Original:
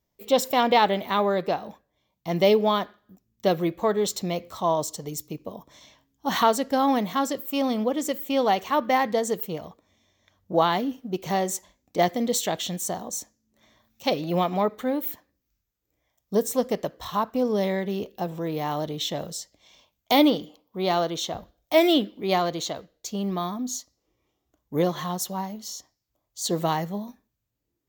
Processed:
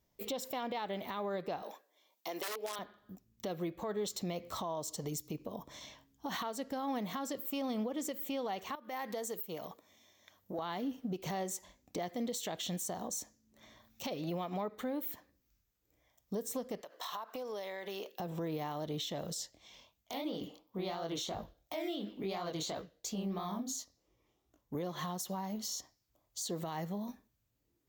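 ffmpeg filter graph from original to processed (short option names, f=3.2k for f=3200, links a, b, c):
-filter_complex "[0:a]asettb=1/sr,asplit=3[a][b][c];[a]atrim=end=1.624[d];[b]atrim=start=1.62:end=2.79,asetpts=PTS-STARTPTS,afade=t=in:d=0.004:c=qsin,afade=t=out:st=1.166:d=0.004:c=qsin,highshelf=f=4.1k:g=7,aeval=exprs='(mod(4.47*val(0)+1,2)-1)/4.47':c=same,highpass=f=340:w=0.5412,highpass=f=340:w=1.3066[e];[c]atrim=start=2.786[f];[d][e]acrossfade=d=0.004:c1=hsin:c2=qsin[g];[g][f]acrossfade=d=0.004:c1=qsin:c2=hsin,asettb=1/sr,asplit=3[h][i][j];[h]atrim=end=8.754[k];[i]atrim=start=8.75:end=10.59,asetpts=PTS-STARTPTS,afade=t=in:d=0.004:c=qsin,afade=t=out:st=1.836:d=0.004:c=qsin,highpass=f=320:p=1,equalizer=f=15k:t=o:w=1:g=9.5,acompressor=threshold=-41dB:ratio=3:attack=3.2:release=140:knee=1:detection=peak[l];[j]atrim=start=10.586[m];[k][l]acrossfade=d=0.004:c1=hsin:c2=qsin[n];[n][m]acrossfade=d=0.004:c1=qsin:c2=hsin,asettb=1/sr,asplit=3[o][p][q];[o]atrim=end=16.814[r];[p]atrim=start=16.81:end=18.2,asetpts=PTS-STARTPTS,afade=t=in:d=0.004:c=qsin,afade=t=out:st=1.386:d=0.004:c=qsin,highpass=610,acompressor=threshold=-38dB:ratio=16:attack=3.2:release=140:knee=1:detection=peak[s];[q]atrim=start=18.196[t];[r][s]acrossfade=d=0.004:c1=hsin:c2=qsin[u];[u][t]acrossfade=d=0.004:c1=qsin:c2=hsin,asettb=1/sr,asplit=3[v][w][x];[v]atrim=end=19.344[y];[w]atrim=start=19.34:end=24.75,asetpts=PTS-STARTPTS,afade=t=in:d=0.004:c=qsin,afade=t=out:st=5.406:d=0.004:c=qsin,acompressor=threshold=-31dB:ratio=6:attack=3.2:release=140:knee=1:detection=peak,flanger=delay=18:depth=7.9:speed=2.9[z];[x]atrim=start=24.746[aa];[y][z]acrossfade=d=0.004:c1=hsin:c2=qsin[ab];[ab][aa]acrossfade=d=0.004:c1=qsin:c2=hsin,acompressor=threshold=-34dB:ratio=6,alimiter=level_in=6dB:limit=-24dB:level=0:latency=1:release=81,volume=-6dB,volume=1dB"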